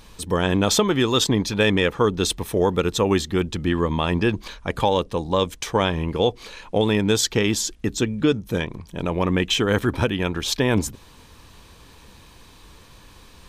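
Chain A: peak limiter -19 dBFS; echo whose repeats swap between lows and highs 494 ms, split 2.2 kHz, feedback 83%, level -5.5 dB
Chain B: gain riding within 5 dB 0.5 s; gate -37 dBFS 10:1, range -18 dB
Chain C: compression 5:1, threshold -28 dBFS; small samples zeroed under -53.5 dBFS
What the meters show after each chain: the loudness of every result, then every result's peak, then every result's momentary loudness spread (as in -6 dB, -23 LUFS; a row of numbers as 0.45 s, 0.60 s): -28.0 LUFS, -22.0 LUFS, -31.5 LUFS; -13.5 dBFS, -6.0 dBFS, -14.0 dBFS; 9 LU, 3 LU, 18 LU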